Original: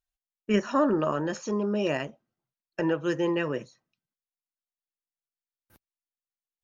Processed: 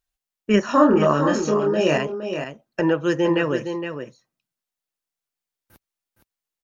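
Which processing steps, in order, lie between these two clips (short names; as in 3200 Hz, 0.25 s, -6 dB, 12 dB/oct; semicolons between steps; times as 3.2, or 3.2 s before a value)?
0.66–1.98 doubler 27 ms -2.5 dB; on a send: echo 0.464 s -8 dB; on the sum: gain +6.5 dB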